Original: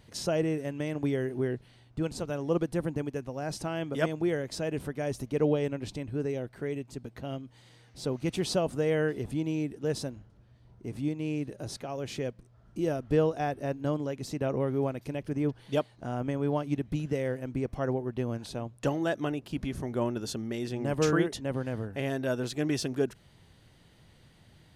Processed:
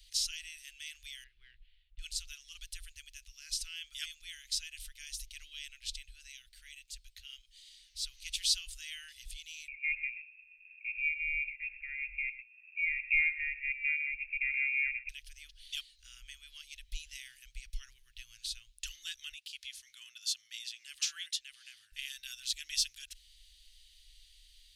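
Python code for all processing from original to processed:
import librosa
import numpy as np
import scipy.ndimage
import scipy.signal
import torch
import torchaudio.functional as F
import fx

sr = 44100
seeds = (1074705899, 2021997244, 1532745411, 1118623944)

y = fx.chain(x, sr, fx.median_filter(points=9),
    fx.air_absorb(metres=420.0), at=(1.24, 1.99))
y = fx.chain(y, sr, fx.block_float(bits=7),
    fx.freq_invert(carrier_hz=2600),
    fx.echo_single(ms=122, db=-14.5), at=(9.68, 15.09))
y = fx.chain(y, sr, fx.highpass(hz=310.0, slope=12),
    fx.high_shelf(hz=9900.0, db=-6.0), at=(19.32, 21.92))
y = scipy.signal.sosfilt(scipy.signal.cheby2(4, 70, [140.0, 840.0], 'bandstop', fs=sr, output='sos'), y)
y = fx.high_shelf(y, sr, hz=4200.0, db=-6.5)
y = F.gain(torch.from_numpy(y), 10.5).numpy()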